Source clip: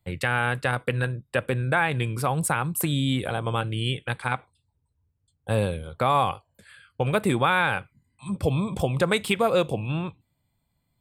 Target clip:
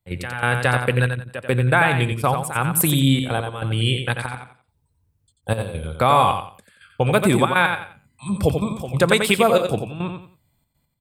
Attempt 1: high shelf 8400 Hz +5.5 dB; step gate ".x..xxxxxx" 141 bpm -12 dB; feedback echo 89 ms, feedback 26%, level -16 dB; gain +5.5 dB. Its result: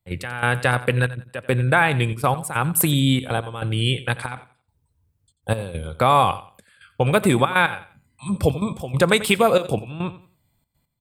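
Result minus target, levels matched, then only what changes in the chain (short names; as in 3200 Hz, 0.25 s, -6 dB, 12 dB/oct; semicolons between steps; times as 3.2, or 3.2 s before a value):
echo-to-direct -9.5 dB
change: feedback echo 89 ms, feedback 26%, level -6.5 dB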